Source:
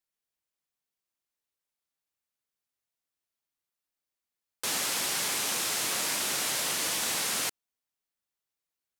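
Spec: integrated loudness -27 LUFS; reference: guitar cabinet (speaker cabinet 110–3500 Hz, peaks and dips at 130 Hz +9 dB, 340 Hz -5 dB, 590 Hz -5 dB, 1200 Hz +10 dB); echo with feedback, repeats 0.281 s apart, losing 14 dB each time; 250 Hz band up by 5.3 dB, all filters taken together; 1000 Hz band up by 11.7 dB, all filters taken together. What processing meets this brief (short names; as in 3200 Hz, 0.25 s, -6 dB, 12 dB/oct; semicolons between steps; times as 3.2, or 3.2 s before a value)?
speaker cabinet 110–3500 Hz, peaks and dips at 130 Hz +9 dB, 340 Hz -5 dB, 590 Hz -5 dB, 1200 Hz +10 dB; bell 250 Hz +8 dB; bell 1000 Hz +8 dB; feedback echo 0.281 s, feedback 20%, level -14 dB; gain +1 dB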